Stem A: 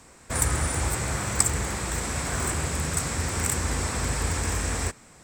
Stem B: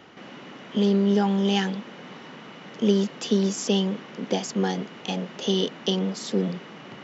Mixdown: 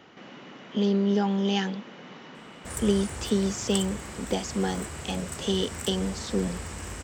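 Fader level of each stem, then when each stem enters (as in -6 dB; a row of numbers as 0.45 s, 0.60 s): -11.0 dB, -3.0 dB; 2.35 s, 0.00 s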